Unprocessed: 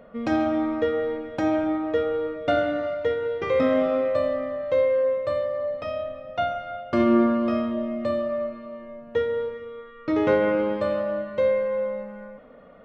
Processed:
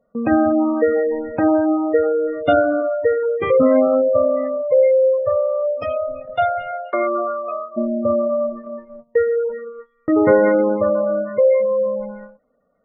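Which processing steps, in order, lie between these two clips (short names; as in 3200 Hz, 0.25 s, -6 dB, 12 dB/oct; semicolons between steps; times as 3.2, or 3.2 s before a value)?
spectral gate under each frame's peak -20 dB strong; gate -38 dBFS, range -25 dB; 6.71–7.76 HPF 380 Hz -> 800 Hz 24 dB/oct; gain +7.5 dB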